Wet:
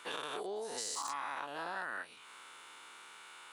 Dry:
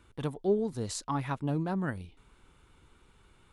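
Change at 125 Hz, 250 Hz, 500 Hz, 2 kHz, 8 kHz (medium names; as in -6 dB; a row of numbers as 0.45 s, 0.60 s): -31.0 dB, -20.5 dB, -10.0 dB, +3.5 dB, +1.5 dB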